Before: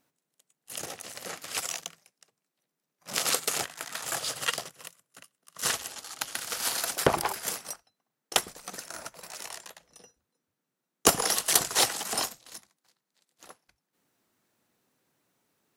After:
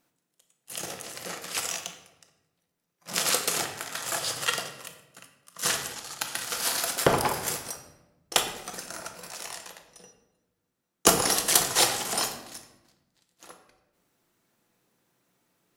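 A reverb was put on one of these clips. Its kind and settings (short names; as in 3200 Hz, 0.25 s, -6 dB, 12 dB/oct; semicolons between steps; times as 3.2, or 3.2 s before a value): shoebox room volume 420 m³, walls mixed, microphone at 0.8 m; gain +1 dB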